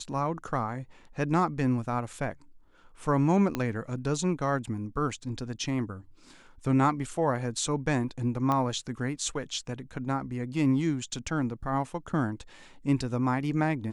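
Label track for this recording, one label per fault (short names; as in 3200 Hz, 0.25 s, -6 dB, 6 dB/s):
3.550000	3.550000	pop -15 dBFS
8.520000	8.520000	pop -16 dBFS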